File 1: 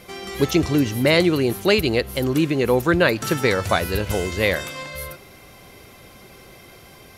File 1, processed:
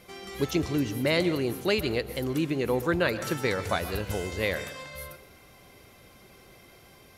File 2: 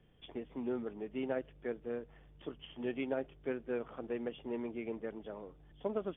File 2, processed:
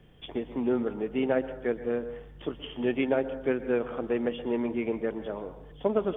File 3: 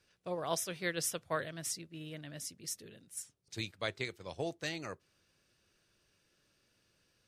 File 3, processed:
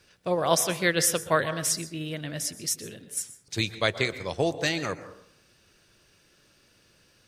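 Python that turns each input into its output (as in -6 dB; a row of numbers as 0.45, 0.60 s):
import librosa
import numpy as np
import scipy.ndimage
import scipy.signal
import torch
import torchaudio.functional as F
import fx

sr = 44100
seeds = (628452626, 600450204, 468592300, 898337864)

y = fx.rev_plate(x, sr, seeds[0], rt60_s=0.65, hf_ratio=0.35, predelay_ms=110, drr_db=12.5)
y = y * 10.0 ** (-30 / 20.0) / np.sqrt(np.mean(np.square(y)))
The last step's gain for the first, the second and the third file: -8.5, +10.0, +12.0 dB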